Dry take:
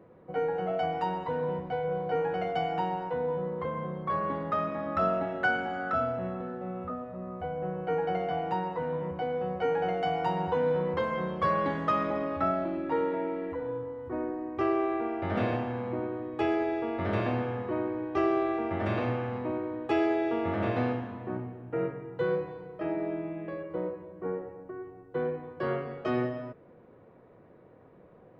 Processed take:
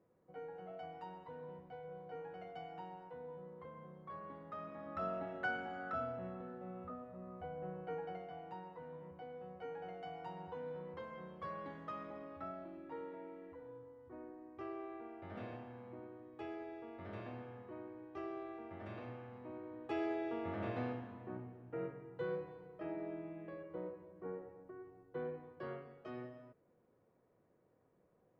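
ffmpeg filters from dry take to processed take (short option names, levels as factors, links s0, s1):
-af "volume=0.596,afade=t=in:st=4.47:d=0.84:silence=0.421697,afade=t=out:st=7.72:d=0.56:silence=0.446684,afade=t=in:st=19.38:d=0.7:silence=0.446684,afade=t=out:st=25.35:d=0.59:silence=0.446684"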